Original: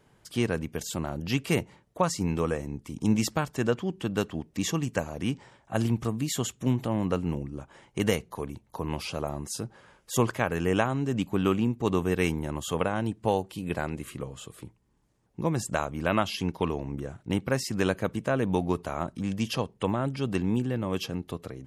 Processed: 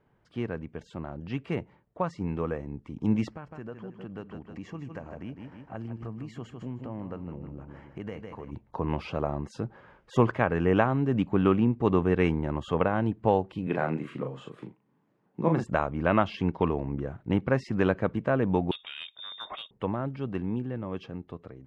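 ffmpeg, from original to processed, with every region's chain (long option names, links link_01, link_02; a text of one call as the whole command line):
ffmpeg -i in.wav -filter_complex "[0:a]asettb=1/sr,asplit=3[link_01][link_02][link_03];[link_01]atrim=end=3.314[link_04];[link_02]atrim=start=3.31:end=8.52,asetpts=PTS-STARTPTS,afade=type=in:duration=0.004:curve=qsin,afade=type=out:start_time=5.206:duration=0.004:curve=qsin,bandreject=frequency=3600:width=5,aecho=1:1:156|312|468|624:0.282|0.0986|0.0345|0.0121,atrim=end_sample=229761,acompressor=threshold=-43dB:ratio=2.5:attack=3.2:release=140:knee=1:detection=peak[link_05];[link_03]atrim=start=8.516[link_06];[link_04][link_05]acrossfade=duration=0.004:curve1=hsin:curve2=qsin[link_07];[link_07][link_06]acrossfade=duration=0.004:curve1=qsin:curve2=hsin,asettb=1/sr,asplit=3[link_08][link_09][link_10];[link_08]atrim=end=13.674[link_11];[link_09]atrim=start=13.67:end=15.64,asetpts=PTS-STARTPTS,afade=type=in:duration=0.004:curve=qsin,afade=type=out:start_time=1.966:duration=0.004:curve=qsin,highpass=frequency=140:width=0.5412,highpass=frequency=140:width=1.3066,asplit=2[link_12][link_13];[link_13]adelay=38,volume=-4.5dB[link_14];[link_12][link_14]amix=inputs=2:normalize=0,atrim=end_sample=86877[link_15];[link_10]atrim=start=15.636[link_16];[link_11][link_15]acrossfade=duration=0.004:curve1=hsin:curve2=qsin[link_17];[link_17][link_16]acrossfade=duration=0.004:curve1=qsin:curve2=hsin,asettb=1/sr,asplit=3[link_18][link_19][link_20];[link_18]atrim=end=18.714[link_21];[link_19]atrim=start=18.71:end=19.71,asetpts=PTS-STARTPTS,afade=type=in:duration=0.004:curve=qsin,afade=type=out:start_time=0.996:duration=0.004:curve=qsin,lowpass=frequency=3200:width_type=q:width=0.5098,lowpass=frequency=3200:width_type=q:width=0.6013,lowpass=frequency=3200:width_type=q:width=0.9,lowpass=frequency=3200:width_type=q:width=2.563,afreqshift=-3800,volume=24dB,asoftclip=hard,volume=-24dB[link_22];[link_20]atrim=start=19.706[link_23];[link_21][link_22]acrossfade=duration=0.004:curve1=hsin:curve2=qsin[link_24];[link_24][link_23]acrossfade=duration=0.004:curve1=qsin:curve2=hsin,lowpass=2000,dynaudnorm=framelen=500:gausssize=13:maxgain=9.5dB,volume=-5.5dB" out.wav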